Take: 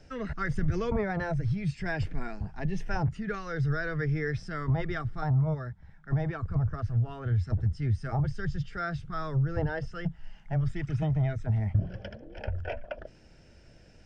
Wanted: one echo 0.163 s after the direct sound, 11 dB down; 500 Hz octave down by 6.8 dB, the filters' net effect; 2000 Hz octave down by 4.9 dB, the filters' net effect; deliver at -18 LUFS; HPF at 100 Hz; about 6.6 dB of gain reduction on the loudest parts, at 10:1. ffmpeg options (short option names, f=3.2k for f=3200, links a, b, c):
-af "highpass=100,equalizer=f=500:t=o:g=-8.5,equalizer=f=2k:t=o:g=-6,acompressor=threshold=-30dB:ratio=10,aecho=1:1:163:0.282,volume=18.5dB"